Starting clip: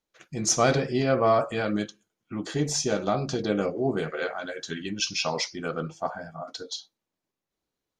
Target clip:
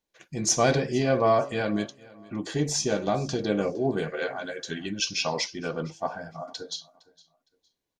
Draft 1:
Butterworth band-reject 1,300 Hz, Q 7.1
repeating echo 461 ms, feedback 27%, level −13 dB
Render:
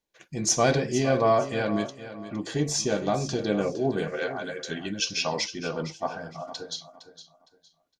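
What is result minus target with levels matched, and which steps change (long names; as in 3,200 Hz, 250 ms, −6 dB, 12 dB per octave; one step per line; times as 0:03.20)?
echo-to-direct +9.5 dB
change: repeating echo 461 ms, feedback 27%, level −22.5 dB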